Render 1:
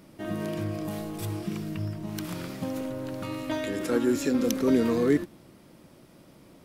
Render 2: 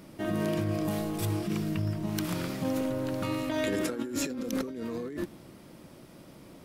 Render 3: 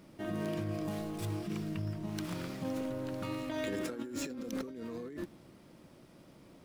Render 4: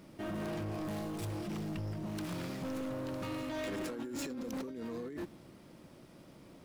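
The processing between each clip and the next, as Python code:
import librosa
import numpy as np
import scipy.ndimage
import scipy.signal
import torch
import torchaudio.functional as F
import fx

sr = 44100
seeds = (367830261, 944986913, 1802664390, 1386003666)

y1 = fx.over_compress(x, sr, threshold_db=-31.0, ratio=-1.0)
y2 = scipy.ndimage.median_filter(y1, 3, mode='constant')
y2 = y2 * 10.0 ** (-6.5 / 20.0)
y3 = np.clip(y2, -10.0 ** (-37.0 / 20.0), 10.0 ** (-37.0 / 20.0))
y3 = y3 * 10.0 ** (1.5 / 20.0)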